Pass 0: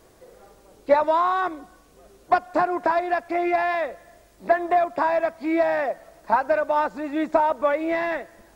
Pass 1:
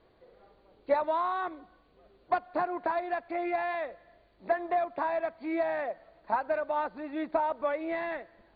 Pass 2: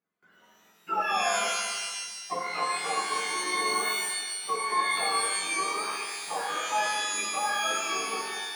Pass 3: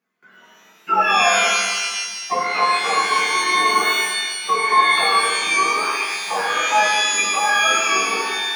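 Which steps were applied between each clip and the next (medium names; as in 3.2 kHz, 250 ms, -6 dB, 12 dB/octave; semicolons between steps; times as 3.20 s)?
Chebyshev low-pass 4.6 kHz, order 10; trim -8.5 dB
spectrum inverted on a logarithmic axis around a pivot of 870 Hz; gate with hold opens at -53 dBFS; pitch-shifted reverb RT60 1.4 s, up +12 st, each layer -2 dB, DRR -0.5 dB; trim -1.5 dB
reverberation RT60 0.70 s, pre-delay 3 ms, DRR 6 dB; trim +5.5 dB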